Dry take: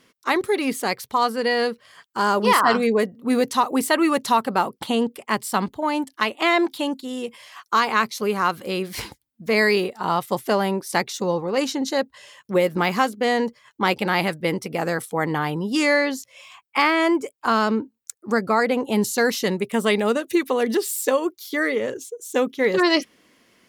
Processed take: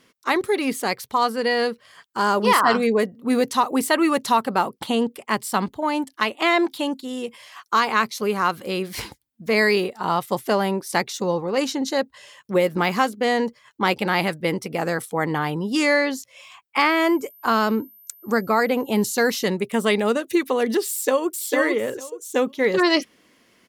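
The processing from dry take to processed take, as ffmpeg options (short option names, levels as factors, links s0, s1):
-filter_complex "[0:a]asettb=1/sr,asplit=3[s0][s1][s2];[s0]atrim=end=16.904[s3];[s1]atrim=start=16.9:end=19.44,asetpts=PTS-STARTPTS,afade=t=in:d=0.004:c=qsin,afade=t=out:st=2.536:d=0.004:c=qsin,aeval=exprs='val(0)+0.00447*sin(2*PI*13000*n/s)':c=same[s4];[s2]atrim=start=19.436[s5];[s3][s4]acrossfade=d=0.004:c1=hsin:c2=qsin[s6];[s6][s5]acrossfade=d=0.004:c1=qsin:c2=hsin,asplit=2[s7][s8];[s8]afade=t=in:st=20.88:d=0.01,afade=t=out:st=21.36:d=0.01,aecho=0:1:450|900|1350:0.749894|0.112484|0.0168726[s9];[s7][s9]amix=inputs=2:normalize=0"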